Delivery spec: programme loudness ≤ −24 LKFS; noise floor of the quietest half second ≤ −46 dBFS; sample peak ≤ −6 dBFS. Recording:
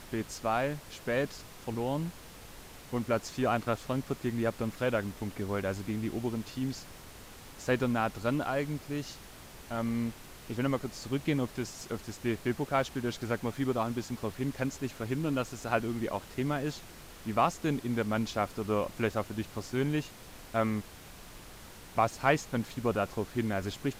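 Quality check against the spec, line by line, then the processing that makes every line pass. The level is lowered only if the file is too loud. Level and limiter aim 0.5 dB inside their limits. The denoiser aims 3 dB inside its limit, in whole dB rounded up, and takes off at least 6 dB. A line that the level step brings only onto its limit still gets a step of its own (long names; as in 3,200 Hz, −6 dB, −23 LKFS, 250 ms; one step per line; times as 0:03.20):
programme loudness −33.0 LKFS: in spec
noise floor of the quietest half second −49 dBFS: in spec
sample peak −12.0 dBFS: in spec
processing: no processing needed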